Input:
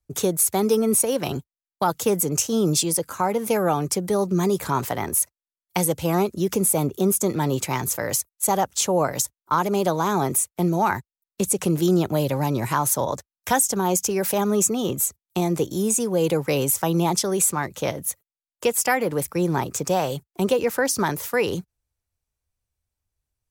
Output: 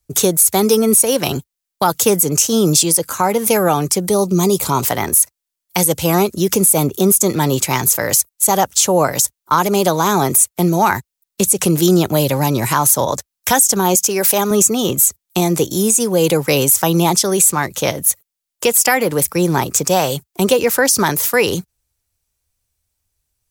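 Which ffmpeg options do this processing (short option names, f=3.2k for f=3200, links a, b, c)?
-filter_complex "[0:a]asettb=1/sr,asplit=3[a][b][c];[a]atrim=end=4.094[d];[b]atrim=start=4.09:end=4.85,asetpts=PTS-STARTPTS,afade=t=in:d=0.004:c=qsin,afade=t=out:st=0.756:d=0.004:c=qsin,equalizer=f=1.7k:t=o:w=0.38:g=-15[e];[c]atrim=start=4.846[f];[d][e]acrossfade=d=0.004:c1=hsin:c2=qsin[g];[g][f]acrossfade=d=0.004:c1=qsin:c2=hsin,asettb=1/sr,asplit=3[h][i][j];[h]atrim=end=13.954[k];[i]atrim=start=13.95:end=14.51,asetpts=PTS-STARTPTS,afade=t=in:d=0.004:c=qsin,afade=t=out:st=0.556:d=0.004:c=qsin,highpass=f=260:p=1[l];[j]atrim=start=14.506[m];[k][l]acrossfade=d=0.004:c1=hsin:c2=qsin[n];[n][m]acrossfade=d=0.004:c1=qsin:c2=hsin,highshelf=f=3k:g=9,alimiter=level_in=7.5dB:limit=-1dB:release=50:level=0:latency=1,volume=-1dB"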